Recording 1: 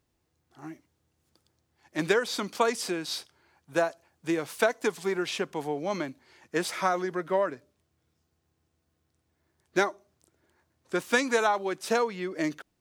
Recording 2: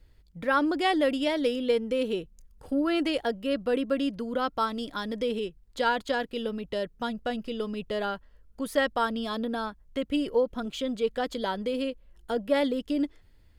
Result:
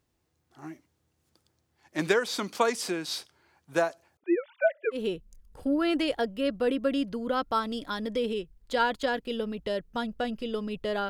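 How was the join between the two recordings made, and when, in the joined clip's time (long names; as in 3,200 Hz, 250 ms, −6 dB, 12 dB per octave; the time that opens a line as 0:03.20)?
recording 1
0:04.17–0:05.01: three sine waves on the formant tracks
0:04.96: continue with recording 2 from 0:02.02, crossfade 0.10 s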